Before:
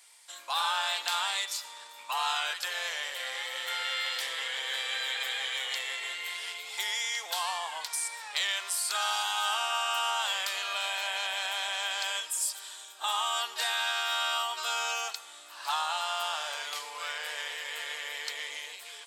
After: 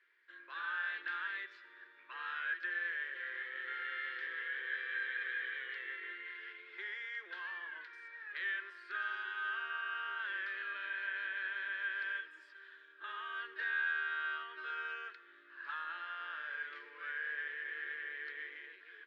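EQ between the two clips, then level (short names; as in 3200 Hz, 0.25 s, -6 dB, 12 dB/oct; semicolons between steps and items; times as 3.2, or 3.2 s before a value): double band-pass 770 Hz, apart 2.2 oct; air absorption 330 m; +6.0 dB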